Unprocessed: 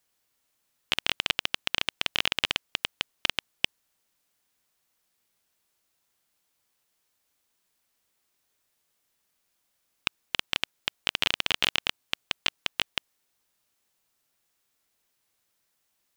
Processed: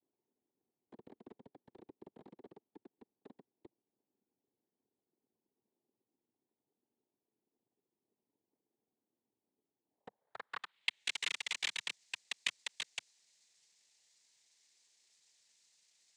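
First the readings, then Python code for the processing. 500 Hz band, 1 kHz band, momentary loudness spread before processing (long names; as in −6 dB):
−15.5 dB, −15.5 dB, 7 LU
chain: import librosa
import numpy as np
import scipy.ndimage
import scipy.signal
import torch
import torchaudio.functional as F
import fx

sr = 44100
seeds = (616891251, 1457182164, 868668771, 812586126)

y = fx.low_shelf(x, sr, hz=260.0, db=-3.0)
y = fx.notch(y, sr, hz=1200.0, q=9.1)
y = np.clip(10.0 ** (20.5 / 20.0) * y, -1.0, 1.0) / 10.0 ** (20.5 / 20.0)
y = fx.filter_sweep_lowpass(y, sr, from_hz=340.0, to_hz=5000.0, start_s=9.85, end_s=11.21, q=5.5)
y = fx.noise_vocoder(y, sr, seeds[0], bands=6)
y = y * 10.0 ** (-6.0 / 20.0)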